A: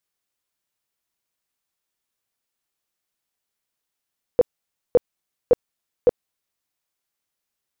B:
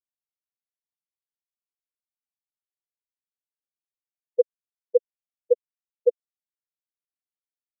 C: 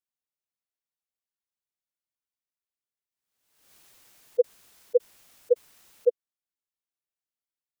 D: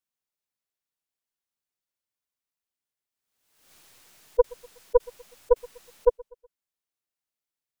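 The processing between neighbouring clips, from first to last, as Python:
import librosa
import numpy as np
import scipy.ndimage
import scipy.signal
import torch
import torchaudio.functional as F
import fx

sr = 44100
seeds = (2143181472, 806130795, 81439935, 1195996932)

y1 = fx.spectral_expand(x, sr, expansion=4.0)
y2 = fx.pre_swell(y1, sr, db_per_s=62.0)
y2 = F.gain(torch.from_numpy(y2), -2.0).numpy()
y3 = fx.tracing_dist(y2, sr, depth_ms=0.14)
y3 = fx.echo_feedback(y3, sr, ms=123, feedback_pct=45, wet_db=-24.0)
y3 = F.gain(torch.from_numpy(y3), 2.0).numpy()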